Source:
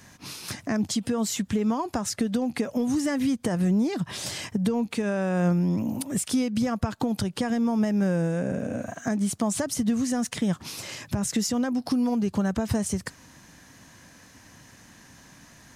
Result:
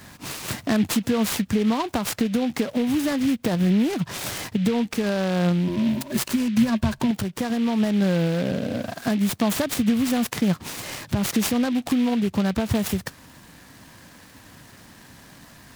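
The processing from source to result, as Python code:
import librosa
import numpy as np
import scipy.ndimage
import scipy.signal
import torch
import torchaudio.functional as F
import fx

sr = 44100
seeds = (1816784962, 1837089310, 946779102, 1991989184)

y = fx.ripple_eq(x, sr, per_octave=1.4, db=16, at=(5.67, 7.11))
y = fx.rider(y, sr, range_db=5, speed_s=2.0)
y = fx.noise_mod_delay(y, sr, seeds[0], noise_hz=2500.0, depth_ms=0.057)
y = F.gain(torch.from_numpy(y), 2.5).numpy()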